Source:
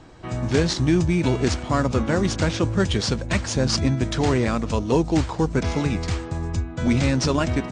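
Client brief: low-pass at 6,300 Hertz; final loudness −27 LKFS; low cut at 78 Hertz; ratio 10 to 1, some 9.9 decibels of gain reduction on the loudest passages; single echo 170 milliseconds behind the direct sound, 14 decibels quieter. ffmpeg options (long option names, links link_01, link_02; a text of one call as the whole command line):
ffmpeg -i in.wav -af "highpass=78,lowpass=6300,acompressor=threshold=-25dB:ratio=10,aecho=1:1:170:0.2,volume=3dB" out.wav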